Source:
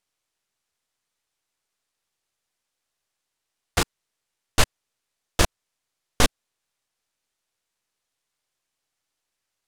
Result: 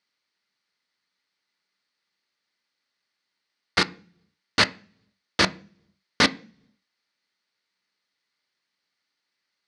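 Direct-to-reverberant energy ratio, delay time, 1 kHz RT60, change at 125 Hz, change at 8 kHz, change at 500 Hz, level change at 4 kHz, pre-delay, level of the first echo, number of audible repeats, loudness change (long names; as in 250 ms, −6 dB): 10.5 dB, no echo audible, 0.40 s, −6.0 dB, −6.0 dB, −1.0 dB, +4.0 dB, 3 ms, no echo audible, no echo audible, +2.0 dB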